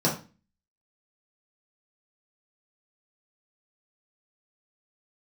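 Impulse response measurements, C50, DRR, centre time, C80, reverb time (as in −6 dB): 8.0 dB, −6.0 dB, 25 ms, 13.5 dB, 0.35 s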